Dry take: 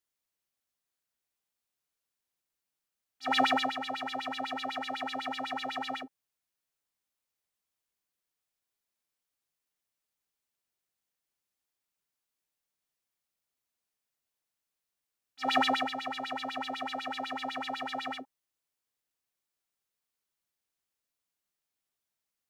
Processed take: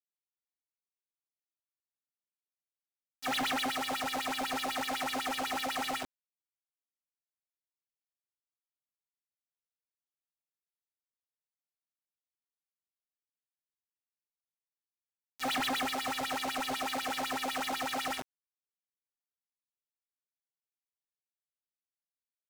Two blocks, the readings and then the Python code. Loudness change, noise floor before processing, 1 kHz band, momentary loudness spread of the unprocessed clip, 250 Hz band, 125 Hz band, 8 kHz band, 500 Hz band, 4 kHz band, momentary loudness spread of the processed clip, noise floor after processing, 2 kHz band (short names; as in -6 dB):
-0.5 dB, under -85 dBFS, -2.0 dB, 10 LU, -1.0 dB, +3.5 dB, +11.5 dB, -1.0 dB, +0.5 dB, 6 LU, under -85 dBFS, 0.0 dB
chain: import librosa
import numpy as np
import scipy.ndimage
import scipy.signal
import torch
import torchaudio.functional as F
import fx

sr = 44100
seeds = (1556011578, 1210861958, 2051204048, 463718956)

y = fx.quant_companded(x, sr, bits=2)
y = fx.doppler_dist(y, sr, depth_ms=0.2)
y = F.gain(torch.from_numpy(y), -6.0).numpy()